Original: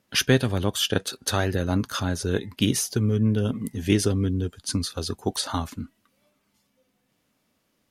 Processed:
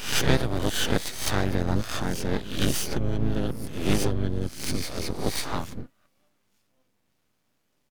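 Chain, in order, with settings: reverse spectral sustain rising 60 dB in 0.58 s; half-wave rectifier; harmony voices -12 st -4 dB, +4 st -7 dB; trim -3 dB

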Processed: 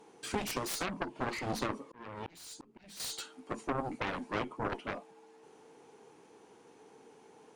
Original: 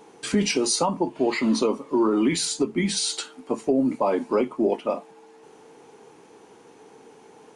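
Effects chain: Chebyshev shaper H 3 -7 dB, 6 -19 dB, 7 -21 dB, 8 -24 dB, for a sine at -11 dBFS; 1.75–3.00 s: slow attack 624 ms; trim -8 dB

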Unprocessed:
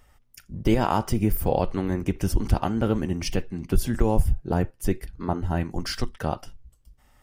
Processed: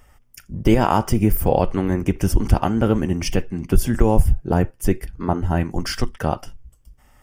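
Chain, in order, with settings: peaking EQ 4 kHz -11.5 dB 0.24 oct; trim +5.5 dB

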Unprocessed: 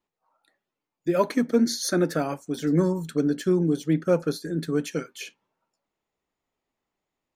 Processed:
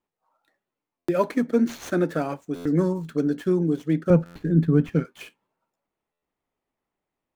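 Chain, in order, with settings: median filter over 9 samples; 4.10–5.05 s: tone controls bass +15 dB, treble -9 dB; buffer glitch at 0.98/2.55/4.25/6.12 s, samples 512, times 8

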